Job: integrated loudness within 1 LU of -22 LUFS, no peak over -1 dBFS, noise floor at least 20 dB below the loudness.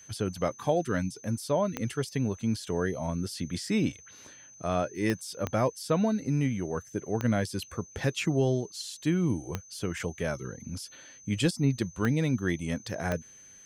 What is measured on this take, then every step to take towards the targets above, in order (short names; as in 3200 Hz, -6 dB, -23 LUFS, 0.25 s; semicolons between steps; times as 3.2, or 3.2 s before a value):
clicks 7; steady tone 6200 Hz; tone level -50 dBFS; loudness -30.5 LUFS; peak -13.0 dBFS; loudness target -22.0 LUFS
-> de-click; notch 6200 Hz, Q 30; gain +8.5 dB